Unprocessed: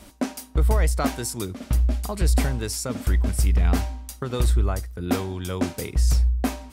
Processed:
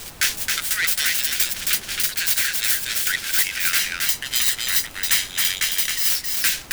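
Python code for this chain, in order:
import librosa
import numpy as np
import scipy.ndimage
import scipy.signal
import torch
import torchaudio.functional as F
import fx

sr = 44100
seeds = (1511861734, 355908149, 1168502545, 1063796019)

y = fx.tracing_dist(x, sr, depth_ms=0.39)
y = fx.spec_gate(y, sr, threshold_db=-20, keep='weak')
y = scipy.signal.sosfilt(scipy.signal.ellip(4, 1.0, 40, 1500.0, 'highpass', fs=sr, output='sos'), y)
y = fx.tilt_eq(y, sr, slope=2.0)
y = fx.leveller(y, sr, passes=3)
y = fx.comb(y, sr, ms=1.0, depth=0.54, at=(3.79, 6.09))
y = fx.dmg_noise_colour(y, sr, seeds[0], colour='pink', level_db=-48.0)
y = fx.rider(y, sr, range_db=4, speed_s=0.5)
y = y + 10.0 ** (-3.5 / 20.0) * np.pad(y, (int(269 * sr / 1000.0), 0))[:len(y)]
y = y * librosa.db_to_amplitude(2.5)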